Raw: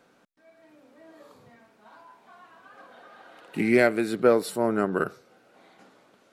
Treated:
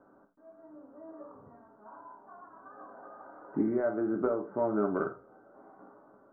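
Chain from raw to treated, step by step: steep low-pass 1400 Hz 48 dB/oct; compressor 10:1, threshold -26 dBFS, peak gain reduction 13 dB; non-linear reverb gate 0.12 s falling, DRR 2.5 dB

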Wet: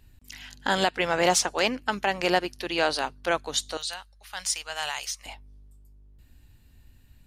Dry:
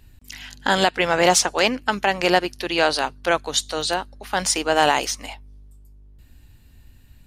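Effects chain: 3.77–5.26 passive tone stack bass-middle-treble 10-0-10; gain -5.5 dB

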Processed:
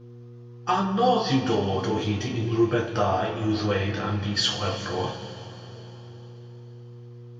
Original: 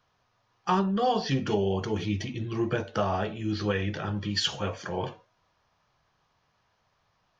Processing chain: buzz 120 Hz, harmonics 4, -50 dBFS -4 dB/oct; two-slope reverb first 0.28 s, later 3.9 s, from -18 dB, DRR -2 dB

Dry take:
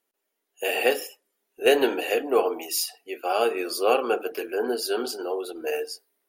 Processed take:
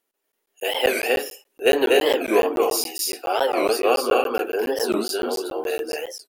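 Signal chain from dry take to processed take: loudspeakers at several distances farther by 83 m -2 dB, 97 m -5 dB; crackling interface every 0.14 s, samples 512, zero, from 0.32; record warp 45 rpm, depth 250 cents; gain +1.5 dB

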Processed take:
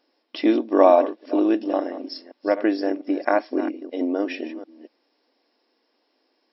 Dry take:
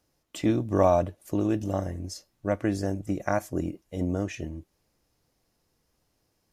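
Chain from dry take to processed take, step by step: reverse delay 0.232 s, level -13 dB; brick-wall FIR band-pass 230–5600 Hz; notch 1300 Hz, Q 11; gain +7 dB

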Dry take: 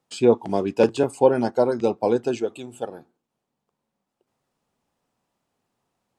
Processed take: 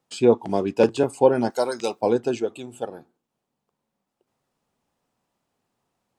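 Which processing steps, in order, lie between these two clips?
1.5–2.01 tilt +4.5 dB/oct

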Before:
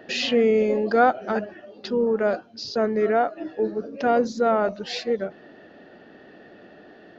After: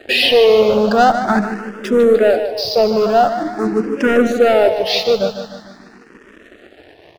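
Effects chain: sample leveller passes 3; feedback echo 0.151 s, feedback 56%, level -9.5 dB; endless phaser +0.45 Hz; gain +3 dB

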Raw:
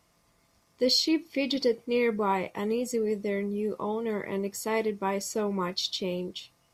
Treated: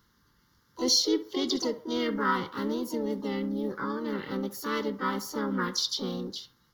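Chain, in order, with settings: harmoniser +5 st -1 dB, +7 st -8 dB, +12 st -14 dB; fixed phaser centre 2500 Hz, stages 6; narrowing echo 66 ms, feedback 51%, band-pass 870 Hz, level -13.5 dB

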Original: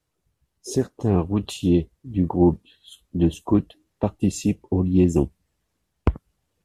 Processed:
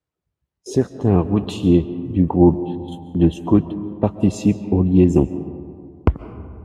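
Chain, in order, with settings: HPF 42 Hz; gate -46 dBFS, range -11 dB; LPF 3000 Hz 6 dB/oct; reverb RT60 2.2 s, pre-delay 0.1 s, DRR 12.5 dB; 3.48–4.06 mismatched tape noise reduction decoder only; gain +4.5 dB

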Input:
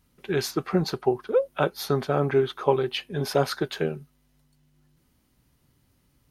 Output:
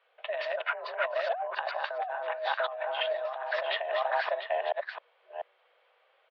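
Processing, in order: reverse delay 0.429 s, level -2 dB; on a send: echo 0.694 s -8.5 dB; on the sum: negative-ratio compressor -30 dBFS, ratio -1; mistuned SSB +230 Hz 340–3100 Hz

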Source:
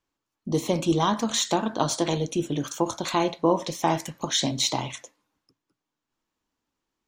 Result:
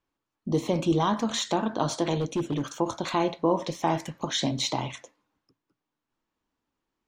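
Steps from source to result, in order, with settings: LPF 3000 Hz 6 dB/oct; 2.2–2.79 hard clip -23 dBFS, distortion -22 dB; in parallel at 0 dB: limiter -17 dBFS, peak gain reduction 9.5 dB; on the sum: gain -5.5 dB

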